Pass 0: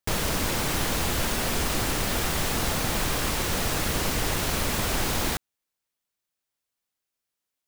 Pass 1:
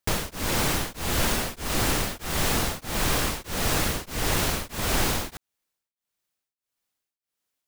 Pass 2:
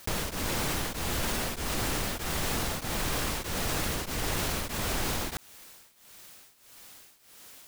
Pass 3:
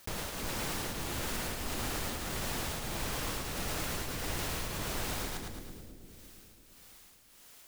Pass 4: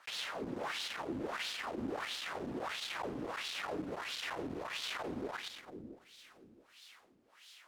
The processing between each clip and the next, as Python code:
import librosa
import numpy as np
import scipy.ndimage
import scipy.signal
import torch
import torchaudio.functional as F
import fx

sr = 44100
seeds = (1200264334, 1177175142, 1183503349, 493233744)

y1 = x * np.abs(np.cos(np.pi * 1.6 * np.arange(len(x)) / sr))
y1 = y1 * 10.0 ** (3.0 / 20.0)
y2 = fx.env_flatten(y1, sr, amount_pct=70)
y2 = y2 * 10.0 ** (-8.0 / 20.0)
y3 = fx.echo_split(y2, sr, split_hz=470.0, low_ms=339, high_ms=109, feedback_pct=52, wet_db=-3.5)
y3 = y3 * 10.0 ** (-7.0 / 20.0)
y4 = fx.tube_stage(y3, sr, drive_db=36.0, bias=0.6)
y4 = fx.wah_lfo(y4, sr, hz=1.5, low_hz=260.0, high_hz=3800.0, q=2.7)
y4 = y4 * 10.0 ** (12.0 / 20.0)